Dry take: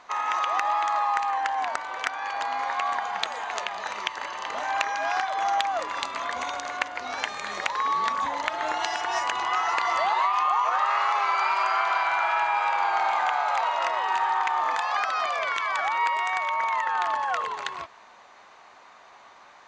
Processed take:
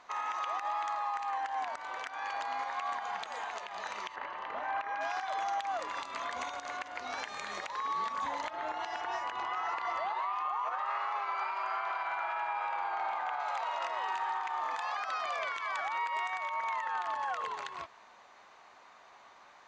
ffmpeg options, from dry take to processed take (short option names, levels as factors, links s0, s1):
-filter_complex "[0:a]asettb=1/sr,asplit=3[s0][s1][s2];[s0]atrim=end=4.154[s3];[s1]atrim=start=4.15:end=5.01,asetpts=PTS-STARTPTS,afade=t=in:d=0.004:c=qsin,afade=t=out:st=0.856:d=0.004:c=qsin,lowpass=2200[s4];[s2]atrim=start=5.006[s5];[s3][s4]acrossfade=d=0.004:c1=hsin:c2=qsin[s6];[s6][s5]acrossfade=d=0.004:c1=qsin:c2=hsin,asettb=1/sr,asplit=3[s7][s8][s9];[s7]atrim=end=8.504[s10];[s8]atrim=start=8.5:end=13.4,asetpts=PTS-STARTPTS,afade=t=in:d=0.004:c=qsin,afade=t=out:st=4.896:d=0.004:c=qsin,aemphasis=mode=reproduction:type=75kf[s11];[s9]atrim=start=13.396[s12];[s10][s11]acrossfade=d=0.004:c1=hsin:c2=qsin[s13];[s13][s12]acrossfade=d=0.004:c1=qsin:c2=hsin,alimiter=limit=0.1:level=0:latency=1:release=103,volume=0.501"